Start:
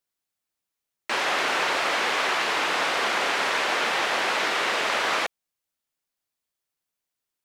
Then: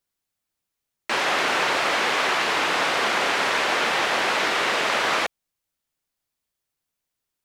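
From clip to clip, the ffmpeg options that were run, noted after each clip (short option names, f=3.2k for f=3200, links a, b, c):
-af "lowshelf=f=170:g=7.5,volume=2dB"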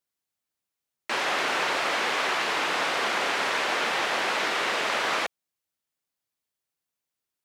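-af "highpass=f=120:p=1,volume=-4dB"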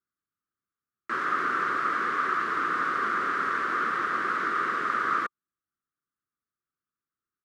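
-af "firequalizer=gain_entry='entry(360,0);entry(590,-15);entry(860,-19);entry(1200,8);entry(2500,-17)':delay=0.05:min_phase=1"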